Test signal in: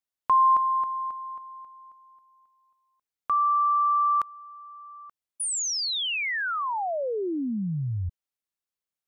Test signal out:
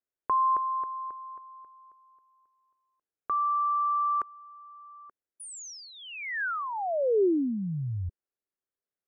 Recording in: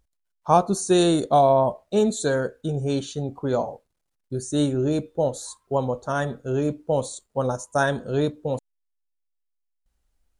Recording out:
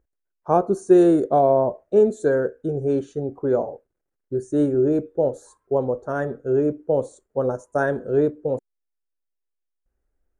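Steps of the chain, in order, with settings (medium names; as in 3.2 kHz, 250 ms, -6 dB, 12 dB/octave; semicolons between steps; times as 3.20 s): FFT filter 210 Hz 0 dB, 390 Hz +10 dB, 990 Hz -3 dB, 1.6 kHz +2 dB, 3.9 kHz -18 dB, 6 kHz -11 dB; trim -3 dB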